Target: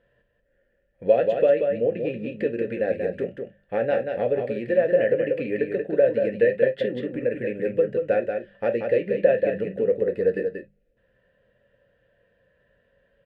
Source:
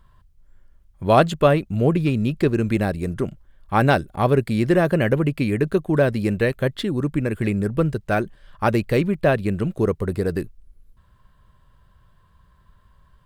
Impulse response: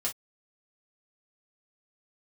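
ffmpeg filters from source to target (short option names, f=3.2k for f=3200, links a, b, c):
-filter_complex "[0:a]lowshelf=f=290:g=7,bandreject=f=50:t=h:w=6,bandreject=f=100:t=h:w=6,bandreject=f=150:t=h:w=6,bandreject=f=200:t=h:w=6,acompressor=threshold=-19dB:ratio=6,asplit=3[a][b][c];[a]bandpass=f=530:t=q:w=8,volume=0dB[d];[b]bandpass=f=1.84k:t=q:w=8,volume=-6dB[e];[c]bandpass=f=2.48k:t=q:w=8,volume=-9dB[f];[d][e][f]amix=inputs=3:normalize=0,aecho=1:1:184:0.531,asplit=2[g][h];[1:a]atrim=start_sample=2205,lowpass=3k[i];[h][i]afir=irnorm=-1:irlink=0,volume=-3.5dB[j];[g][j]amix=inputs=2:normalize=0,volume=7dB"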